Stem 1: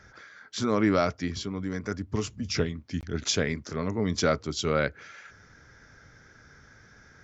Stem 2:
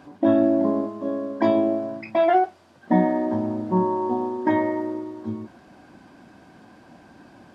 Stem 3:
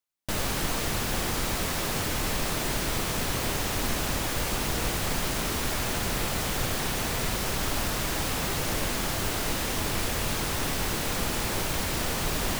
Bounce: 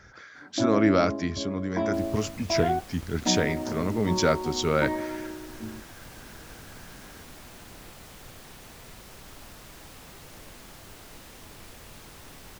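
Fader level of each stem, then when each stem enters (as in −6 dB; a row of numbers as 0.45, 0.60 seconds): +1.5, −8.5, −18.0 decibels; 0.00, 0.35, 1.65 seconds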